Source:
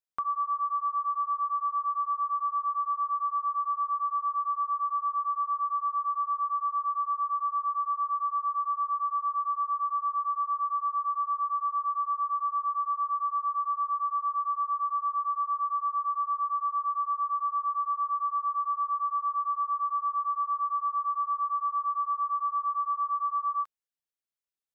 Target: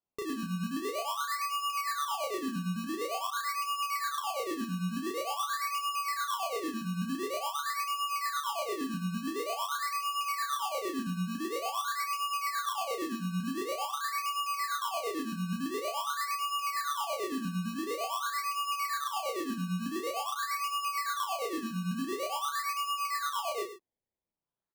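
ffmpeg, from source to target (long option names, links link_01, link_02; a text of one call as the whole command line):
ffmpeg -i in.wav -filter_complex "[0:a]highpass=1100,acrusher=samples=22:mix=1:aa=0.000001:lfo=1:lforange=22:lforate=0.47,asplit=2[link_01][link_02];[link_02]adelay=34,volume=-4dB[link_03];[link_01][link_03]amix=inputs=2:normalize=0,asplit=2[link_04][link_05];[link_05]aecho=0:1:107:0.282[link_06];[link_04][link_06]amix=inputs=2:normalize=0,volume=-4.5dB" out.wav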